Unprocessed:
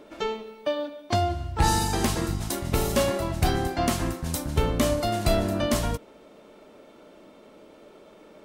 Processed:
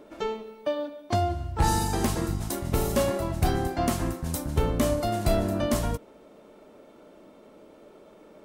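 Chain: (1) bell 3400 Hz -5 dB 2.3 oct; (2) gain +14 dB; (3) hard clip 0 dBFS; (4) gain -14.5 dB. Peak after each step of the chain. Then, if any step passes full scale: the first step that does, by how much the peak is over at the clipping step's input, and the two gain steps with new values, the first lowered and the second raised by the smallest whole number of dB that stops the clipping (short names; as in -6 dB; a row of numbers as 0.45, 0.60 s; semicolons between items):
-10.5, +3.5, 0.0, -14.5 dBFS; step 2, 3.5 dB; step 2 +10 dB, step 4 -10.5 dB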